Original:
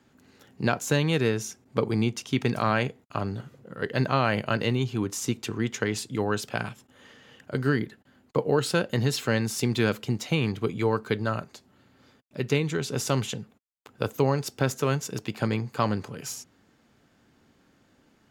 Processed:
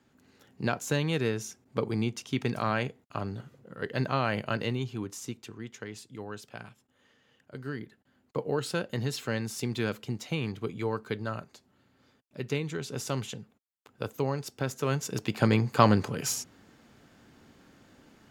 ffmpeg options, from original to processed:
ffmpeg -i in.wav -af "volume=14dB,afade=type=out:start_time=4.54:duration=1.02:silence=0.354813,afade=type=in:start_time=7.63:duration=0.83:silence=0.446684,afade=type=in:start_time=14.73:duration=1.03:silence=0.266073" out.wav

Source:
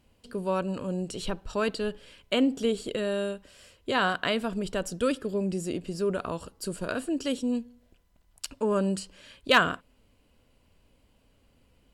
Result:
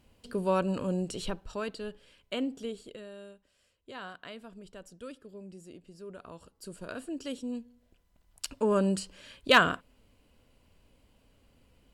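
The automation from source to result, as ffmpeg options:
ffmpeg -i in.wav -af "volume=18.5dB,afade=type=out:start_time=0.87:duration=0.79:silence=0.334965,afade=type=out:start_time=2.43:duration=0.67:silence=0.354813,afade=type=in:start_time=6.05:duration=1:silence=0.334965,afade=type=in:start_time=7.57:duration=0.95:silence=0.398107" out.wav

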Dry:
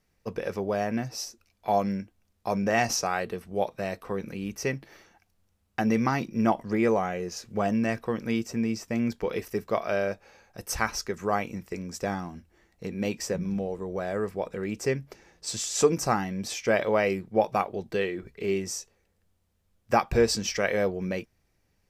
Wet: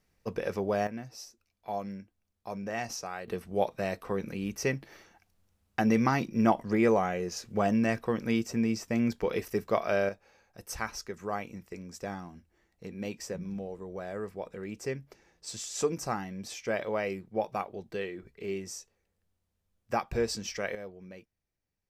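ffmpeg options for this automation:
ffmpeg -i in.wav -af "asetnsamples=nb_out_samples=441:pad=0,asendcmd='0.87 volume volume -10.5dB;3.28 volume volume -0.5dB;10.09 volume volume -7.5dB;20.75 volume volume -17dB',volume=-1dB" out.wav

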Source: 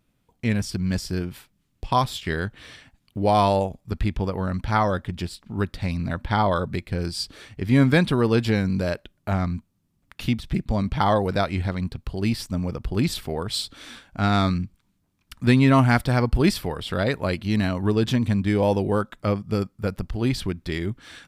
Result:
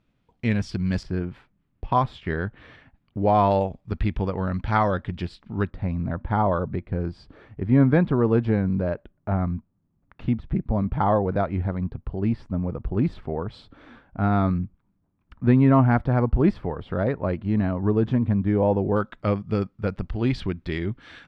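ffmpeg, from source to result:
ffmpeg -i in.wav -af "asetnsamples=nb_out_samples=441:pad=0,asendcmd='1.03 lowpass f 1800;3.51 lowpass f 3100;5.7 lowpass f 1200;18.96 lowpass f 3100',lowpass=3800" out.wav

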